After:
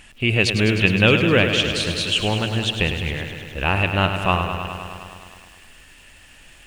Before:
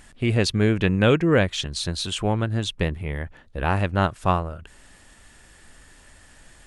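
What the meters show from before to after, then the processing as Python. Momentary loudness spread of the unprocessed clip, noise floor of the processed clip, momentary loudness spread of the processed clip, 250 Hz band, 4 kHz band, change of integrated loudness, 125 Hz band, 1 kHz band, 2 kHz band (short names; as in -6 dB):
12 LU, -48 dBFS, 14 LU, +1.5 dB, +8.0 dB, +3.5 dB, +1.5 dB, +2.0 dB, +8.5 dB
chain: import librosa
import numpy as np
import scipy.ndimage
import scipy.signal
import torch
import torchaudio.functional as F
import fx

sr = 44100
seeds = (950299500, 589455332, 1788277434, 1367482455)

y = fx.peak_eq(x, sr, hz=2700.0, db=14.5, octaves=0.53)
y = fx.echo_crushed(y, sr, ms=103, feedback_pct=80, bits=8, wet_db=-8.5)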